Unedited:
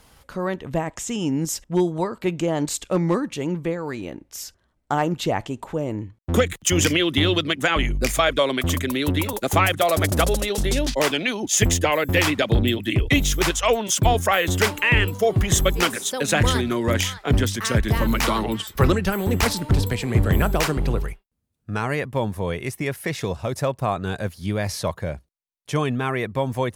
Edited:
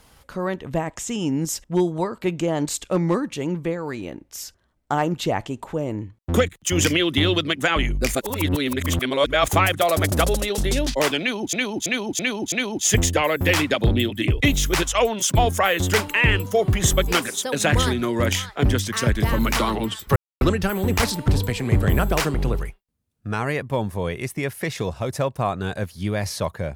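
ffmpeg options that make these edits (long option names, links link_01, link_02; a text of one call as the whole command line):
ffmpeg -i in.wav -filter_complex "[0:a]asplit=9[link_01][link_02][link_03][link_04][link_05][link_06][link_07][link_08][link_09];[link_01]atrim=end=6.49,asetpts=PTS-STARTPTS,afade=type=out:start_time=6.486:duration=0.004:curve=hsin:silence=0.1[link_10];[link_02]atrim=start=6.49:end=8.152,asetpts=PTS-STARTPTS,afade=type=in:duration=0.31:silence=0.1[link_11];[link_03]atrim=start=8.148:end=9.482,asetpts=PTS-STARTPTS,areverse[link_12];[link_04]atrim=start=9.478:end=11.532[link_13];[link_05]atrim=start=11.198:end=11.532[link_14];[link_06]atrim=start=11.198:end=11.532[link_15];[link_07]atrim=start=11.198:end=11.532[link_16];[link_08]atrim=start=11.198:end=18.84,asetpts=PTS-STARTPTS,afade=type=out:start_time=7.638:duration=0.004:curve=hsin,apad=pad_dur=0.25[link_17];[link_09]atrim=start=18.84,asetpts=PTS-STARTPTS,afade=type=in:duration=0.004:curve=hsin[link_18];[link_10][link_11]concat=n=2:v=0:a=1[link_19];[link_19][link_12]acrossfade=duration=0.004:curve1=hsin:curve2=hsin[link_20];[link_20][link_13]acrossfade=duration=0.004:curve1=hsin:curve2=hsin[link_21];[link_21][link_14]acrossfade=duration=0.004:curve1=hsin:curve2=hsin[link_22];[link_22][link_15]acrossfade=duration=0.004:curve1=hsin:curve2=hsin[link_23];[link_23][link_16]acrossfade=duration=0.004:curve1=hsin:curve2=hsin[link_24];[link_17][link_18]concat=n=2:v=0:a=1[link_25];[link_24][link_25]acrossfade=duration=0.004:curve1=hsin:curve2=hsin" out.wav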